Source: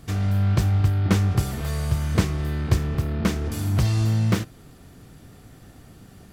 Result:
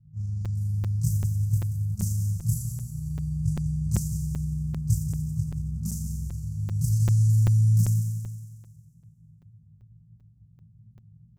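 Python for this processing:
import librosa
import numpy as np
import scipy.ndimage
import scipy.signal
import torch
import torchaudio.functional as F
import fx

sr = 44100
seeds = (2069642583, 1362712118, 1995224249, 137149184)

p1 = scipy.signal.sosfilt(scipy.signal.butter(2, 140.0, 'highpass', fs=sr, output='sos'), x)
p2 = fx.env_lowpass(p1, sr, base_hz=620.0, full_db=-20.5)
p3 = scipy.signal.sosfilt(scipy.signal.cheby2(4, 40, [270.0, 3700.0], 'bandstop', fs=sr, output='sos'), p2)
p4 = fx.stretch_grains(p3, sr, factor=1.8, grain_ms=83.0)
p5 = p4 + fx.echo_heads(p4, sr, ms=91, heads='first and second', feedback_pct=57, wet_db=-11.0, dry=0)
p6 = fx.buffer_crackle(p5, sr, first_s=0.45, period_s=0.39, block=256, kind='zero')
y = p6 * librosa.db_to_amplitude(3.5)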